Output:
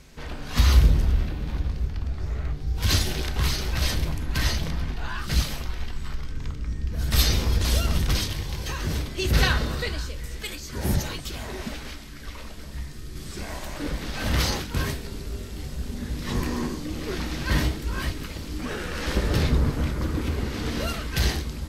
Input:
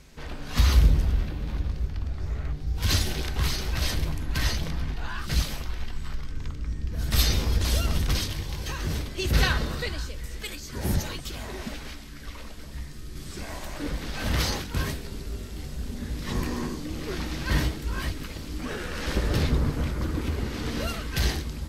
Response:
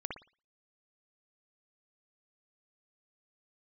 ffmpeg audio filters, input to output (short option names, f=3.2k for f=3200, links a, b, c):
-filter_complex "[0:a]asplit=2[a][b];[1:a]atrim=start_sample=2205,asetrate=83790,aresample=44100[c];[b][c]afir=irnorm=-1:irlink=0,volume=-4dB[d];[a][d]amix=inputs=2:normalize=0"